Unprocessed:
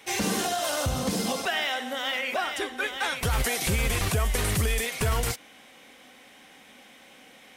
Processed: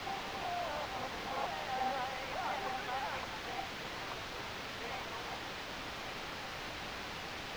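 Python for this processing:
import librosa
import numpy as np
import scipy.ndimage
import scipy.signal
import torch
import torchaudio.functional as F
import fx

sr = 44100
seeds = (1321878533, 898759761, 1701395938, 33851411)

y = fx.over_compress(x, sr, threshold_db=-34.0, ratio=-1.0)
y = fx.bandpass_q(y, sr, hz=870.0, q=2.9)
y = fx.quant_dither(y, sr, seeds[0], bits=6, dither='triangular')
y = fx.air_absorb(y, sr, metres=250.0)
y = y * 10.0 ** (2.0 / 20.0)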